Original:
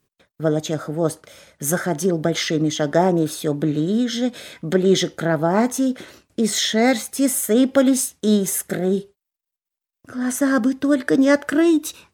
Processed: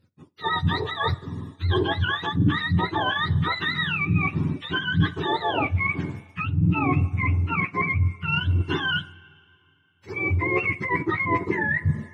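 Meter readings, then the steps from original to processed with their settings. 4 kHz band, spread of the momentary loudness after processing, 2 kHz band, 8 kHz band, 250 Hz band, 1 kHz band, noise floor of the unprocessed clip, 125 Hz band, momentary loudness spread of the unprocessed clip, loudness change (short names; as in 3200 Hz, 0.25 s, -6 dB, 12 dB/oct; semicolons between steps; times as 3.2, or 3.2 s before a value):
-2.0 dB, 5 LU, +4.0 dB, under -35 dB, -10.0 dB, +1.0 dB, -85 dBFS, +4.5 dB, 8 LU, -4.5 dB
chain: spectrum mirrored in octaves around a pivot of 760 Hz; two-slope reverb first 0.31 s, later 2.6 s, from -16 dB, DRR 17.5 dB; added harmonics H 4 -39 dB, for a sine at -2.5 dBFS; reverse; compressor 16:1, threshold -24 dBFS, peak gain reduction 17 dB; reverse; bell 210 Hz +7 dB 2.6 oct; gain +2 dB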